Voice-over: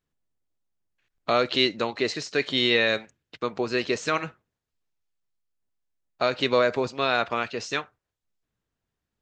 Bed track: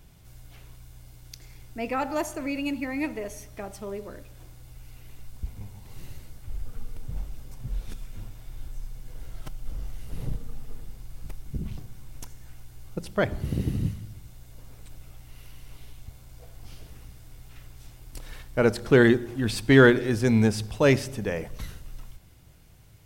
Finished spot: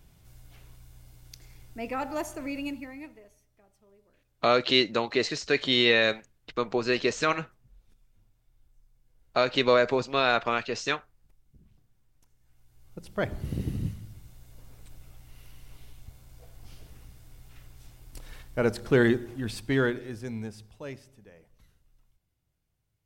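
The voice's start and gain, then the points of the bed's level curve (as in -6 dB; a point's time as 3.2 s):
3.15 s, 0.0 dB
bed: 2.65 s -4 dB
3.46 s -26 dB
12.2 s -26 dB
13.25 s -4 dB
19.21 s -4 dB
21.3 s -24.5 dB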